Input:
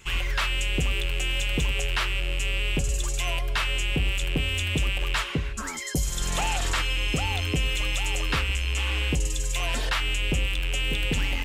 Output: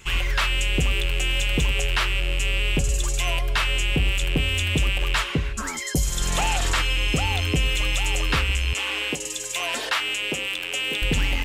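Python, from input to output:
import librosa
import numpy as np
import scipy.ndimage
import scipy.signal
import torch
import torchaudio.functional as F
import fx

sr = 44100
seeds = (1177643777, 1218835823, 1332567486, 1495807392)

y = fx.highpass(x, sr, hz=300.0, slope=12, at=(8.73, 11.02))
y = y * librosa.db_to_amplitude(3.5)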